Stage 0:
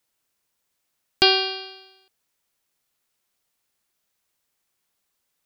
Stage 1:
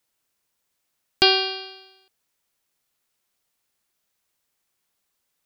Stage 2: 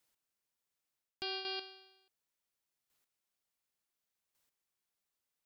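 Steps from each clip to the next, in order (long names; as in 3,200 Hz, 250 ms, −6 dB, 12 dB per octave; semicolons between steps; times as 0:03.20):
no processing that can be heard
square-wave tremolo 0.69 Hz, depth 65%, duty 10%; reversed playback; downward compressor 6 to 1, threshold −34 dBFS, peak gain reduction 13 dB; reversed playback; level −3.5 dB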